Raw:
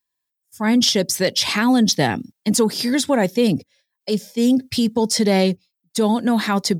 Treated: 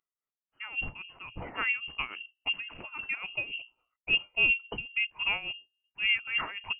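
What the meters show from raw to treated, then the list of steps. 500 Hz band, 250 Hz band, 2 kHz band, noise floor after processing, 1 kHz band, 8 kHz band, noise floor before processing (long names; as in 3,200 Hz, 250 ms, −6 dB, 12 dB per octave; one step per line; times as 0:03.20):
−28.5 dB, −35.0 dB, −1.0 dB, below −85 dBFS, −17.0 dB, below −40 dB, −81 dBFS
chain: spectral tilt +2 dB per octave
mains-hum notches 60/120/180/240/300/360 Hz
automatic gain control
amplitude tremolo 3.6 Hz, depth 85%
voice inversion scrambler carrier 3,000 Hz
level −8.5 dB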